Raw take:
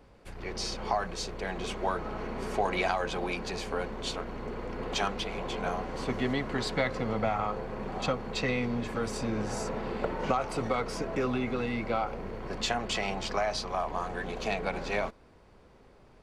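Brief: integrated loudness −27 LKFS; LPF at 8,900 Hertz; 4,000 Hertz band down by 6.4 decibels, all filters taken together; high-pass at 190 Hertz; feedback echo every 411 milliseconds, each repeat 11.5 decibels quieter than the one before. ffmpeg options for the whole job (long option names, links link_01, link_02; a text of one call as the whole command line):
ffmpeg -i in.wav -af "highpass=190,lowpass=8900,equalizer=frequency=4000:width_type=o:gain=-8,aecho=1:1:411|822|1233:0.266|0.0718|0.0194,volume=6.5dB" out.wav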